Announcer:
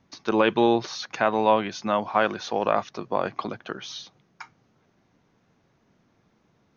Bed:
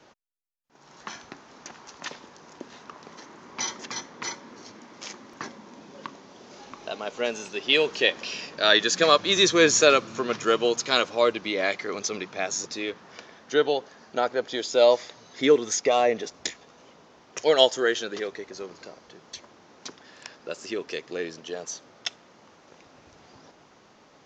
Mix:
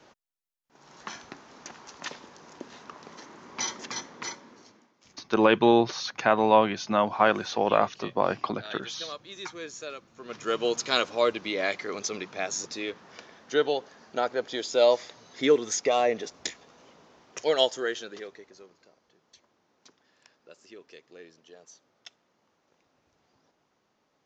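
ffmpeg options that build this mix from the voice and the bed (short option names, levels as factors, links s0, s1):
-filter_complex "[0:a]adelay=5050,volume=1.06[s0];[1:a]volume=7.94,afade=t=out:st=4.07:d=0.87:silence=0.0944061,afade=t=in:st=10.16:d=0.57:silence=0.112202,afade=t=out:st=17.1:d=1.69:silence=0.188365[s1];[s0][s1]amix=inputs=2:normalize=0"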